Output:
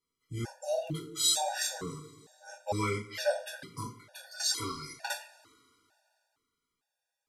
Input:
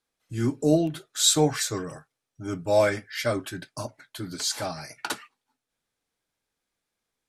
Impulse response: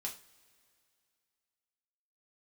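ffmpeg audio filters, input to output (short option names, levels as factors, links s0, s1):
-filter_complex "[0:a]asettb=1/sr,asplit=3[s0][s1][s2];[s0]atrim=end=4.234[s3];[s1]atrim=start=4.23:end=4.96,asetpts=PTS-STARTPTS,afade=t=in:d=0.004:c=qsin,afade=t=out:st=0.726:d=0.004:c=qsin,aecho=1:1:2.8:0.76,atrim=end_sample=32193[s4];[s2]atrim=start=4.956[s5];[s3][s4]acrossfade=d=0.004:c1=hsin:c2=qsin[s6];[s6][s5]acrossfade=d=0.004:c1=qsin:c2=hsin[s7];[1:a]atrim=start_sample=2205[s8];[s7][s8]afir=irnorm=-1:irlink=0,afftfilt=real='re*gt(sin(2*PI*1.1*pts/sr)*(1-2*mod(floor(b*sr/1024/480),2)),0)':imag='im*gt(sin(2*PI*1.1*pts/sr)*(1-2*mod(floor(b*sr/1024/480),2)),0)':win_size=1024:overlap=0.75"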